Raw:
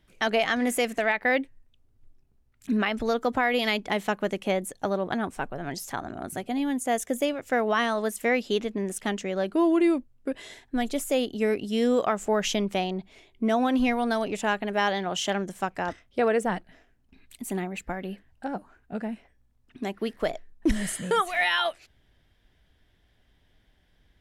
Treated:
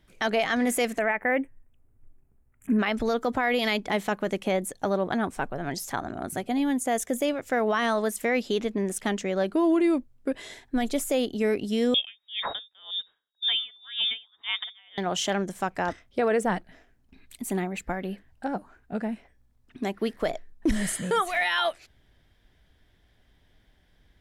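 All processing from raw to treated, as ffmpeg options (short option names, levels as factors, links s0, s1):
-filter_complex "[0:a]asettb=1/sr,asplit=3[s0][s1][s2];[s0]atrim=end=0.994[s3];[s1]atrim=start=0.99:end=2.79,asetpts=PTS-STARTPTS,afade=t=in:d=0.004:c=qsin,afade=t=out:st=1.796:d=0.004:c=qsin,asuperstop=centerf=4500:order=4:qfactor=0.95,equalizer=f=4300:t=o:w=0.78:g=-8.5[s4];[s2]atrim=start=2.786[s5];[s3][s4]acrossfade=d=0.004:c1=hsin:c2=qsin[s6];[s6][s5]acrossfade=d=0.004:c1=qsin:c2=hsin,asettb=1/sr,asplit=3[s7][s8][s9];[s7]atrim=end=11.944[s10];[s8]atrim=start=11.94:end=14.98,asetpts=PTS-STARTPTS,afade=t=in:d=0.004:c=qsin,afade=t=out:st=3.036:d=0.004:c=qsin,lowpass=f=3200:t=q:w=0.5098,lowpass=f=3200:t=q:w=0.6013,lowpass=f=3200:t=q:w=0.9,lowpass=f=3200:t=q:w=2.563,afreqshift=-3800,aeval=exprs='val(0)*pow(10,-34*(0.5-0.5*cos(2*PI*1.9*n/s))/20)':c=same[s11];[s9]atrim=start=14.976[s12];[s10][s11]acrossfade=d=0.004:c1=hsin:c2=qsin[s13];[s13][s12]acrossfade=d=0.004:c1=qsin:c2=hsin,equalizer=f=2800:w=6.2:g=-3,alimiter=limit=0.126:level=0:latency=1:release=16,volume=1.26"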